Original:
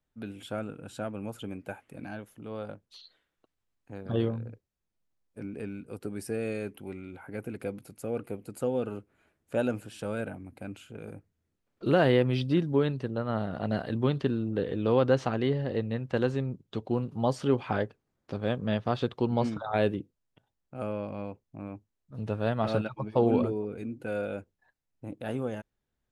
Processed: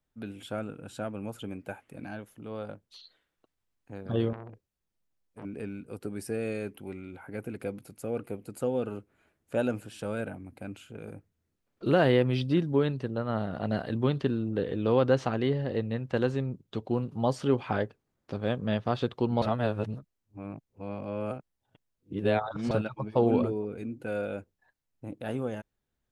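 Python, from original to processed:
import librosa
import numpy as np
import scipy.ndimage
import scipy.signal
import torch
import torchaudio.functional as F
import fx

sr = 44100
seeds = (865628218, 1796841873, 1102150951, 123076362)

y = fx.transformer_sat(x, sr, knee_hz=1100.0, at=(4.33, 5.45))
y = fx.edit(y, sr, fx.reverse_span(start_s=19.42, length_s=3.29), tone=tone)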